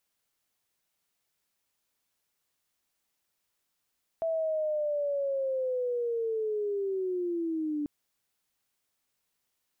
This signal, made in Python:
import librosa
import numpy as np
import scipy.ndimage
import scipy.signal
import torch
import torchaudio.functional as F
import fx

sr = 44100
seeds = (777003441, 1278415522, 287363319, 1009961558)

y = fx.chirp(sr, length_s=3.64, from_hz=660.0, to_hz=290.0, law='linear', from_db=-26.5, to_db=-28.5)